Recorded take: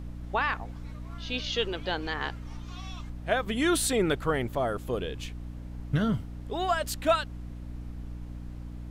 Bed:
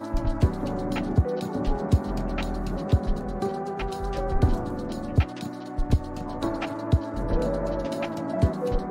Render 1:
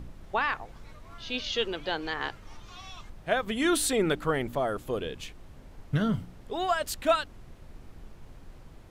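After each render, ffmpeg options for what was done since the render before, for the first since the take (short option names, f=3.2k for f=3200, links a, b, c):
-af "bandreject=f=60:t=h:w=4,bandreject=f=120:t=h:w=4,bandreject=f=180:t=h:w=4,bandreject=f=240:t=h:w=4,bandreject=f=300:t=h:w=4"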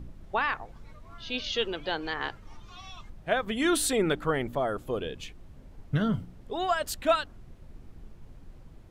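-af "afftdn=nr=6:nf=-50"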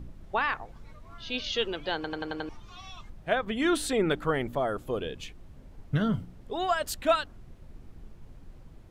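-filter_complex "[0:a]asettb=1/sr,asplit=3[a][b][c];[a]atrim=end=3.354[d];[b]atrim=start=3.35:end=4.11,asetpts=PTS-STARTPTS,afade=t=in:d=0.004:c=qsin,afade=t=out:st=0.756:d=0.004:c=qsin,lowpass=f=3.9k:p=1[e];[c]atrim=start=4.106[f];[d][e]acrossfade=d=0.004:c1=hsin:c2=qsin[g];[g][f]acrossfade=d=0.004:c1=qsin:c2=hsin,asplit=7[h][i][j][k][l][m][n];[h]atrim=end=2.042[o];[i]atrim=start=1.948:end=2.042[p];[j]atrim=start=1.948:end=2.042[q];[k]atrim=start=1.948:end=2.042[r];[l]atrim=start=1.948:end=2.042[s];[m]atrim=start=1.948:end=2.042[t];[n]atrim=start=2.488[u];[o][p]acrossfade=d=0.004:c1=hsin:c2=hsin[v];[v][q]acrossfade=d=0.004:c1=hsin:c2=hsin[w];[w][r]acrossfade=d=0.004:c1=hsin:c2=hsin[x];[x][s]acrossfade=d=0.004:c1=hsin:c2=hsin[y];[y][t]acrossfade=d=0.004:c1=hsin:c2=hsin[z];[z][u]acrossfade=d=0.004:c1=hsin:c2=hsin"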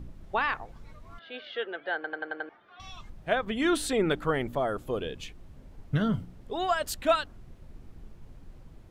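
-filter_complex "[0:a]asettb=1/sr,asplit=3[a][b][c];[a]atrim=end=1.194[d];[b]atrim=start=1.19:end=2.8,asetpts=PTS-STARTPTS,afade=t=in:d=0.004:c=qsin,afade=t=out:st=1.606:d=0.004:c=qsin,highpass=480,equalizer=f=700:t=q:w=4:g=3,equalizer=f=1k:t=q:w=4:g=-10,equalizer=f=1.6k:t=q:w=4:g=7,equalizer=f=2.6k:t=q:w=4:g=-9,lowpass=f=2.7k:w=0.5412,lowpass=f=2.7k:w=1.3066[e];[c]atrim=start=2.796[f];[d][e]acrossfade=d=0.004:c1=hsin:c2=qsin[g];[g][f]acrossfade=d=0.004:c1=qsin:c2=hsin"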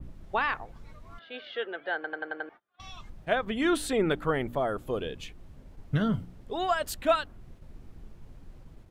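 -af "agate=range=-27dB:threshold=-49dB:ratio=16:detection=peak,adynamicequalizer=threshold=0.00282:dfrequency=5800:dqfactor=0.86:tfrequency=5800:tqfactor=0.86:attack=5:release=100:ratio=0.375:range=2.5:mode=cutabove:tftype=bell"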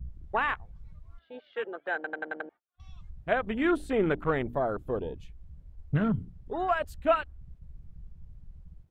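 -af "afwtdn=0.0158,equalizer=f=64:t=o:w=0.48:g=8"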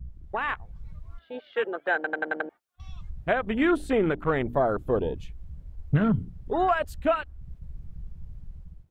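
-af "alimiter=limit=-21dB:level=0:latency=1:release=442,dynaudnorm=f=200:g=5:m=7dB"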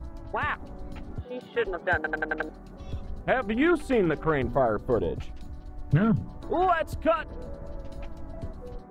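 -filter_complex "[1:a]volume=-16dB[a];[0:a][a]amix=inputs=2:normalize=0"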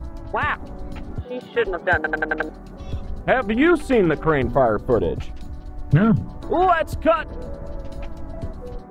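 -af "volume=6.5dB"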